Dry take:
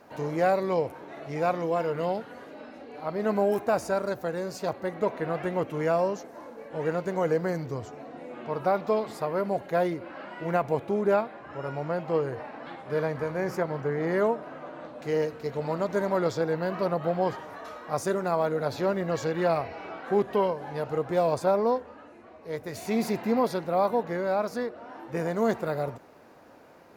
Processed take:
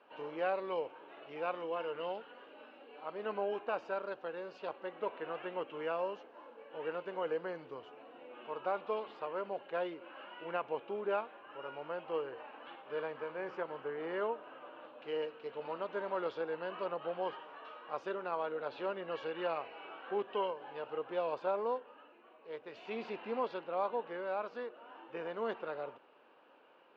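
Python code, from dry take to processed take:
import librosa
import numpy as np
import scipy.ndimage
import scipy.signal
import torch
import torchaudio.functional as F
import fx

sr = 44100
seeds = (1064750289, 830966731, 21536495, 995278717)

y = fx.cabinet(x, sr, low_hz=460.0, low_slope=12, high_hz=3200.0, hz=(680.0, 2000.0, 2900.0), db=(-7, -8, 10))
y = y * librosa.db_to_amplitude(-6.5)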